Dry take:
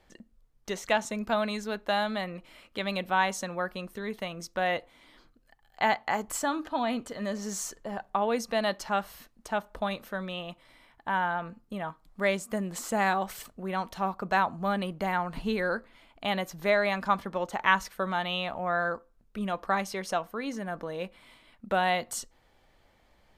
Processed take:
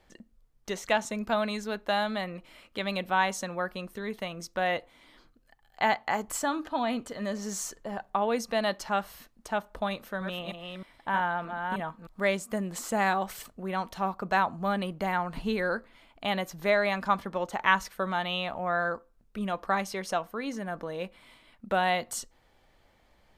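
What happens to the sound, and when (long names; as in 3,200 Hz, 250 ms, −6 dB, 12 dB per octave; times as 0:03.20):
0:09.90–0:12.21: delay that plays each chunk backwards 310 ms, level −4.5 dB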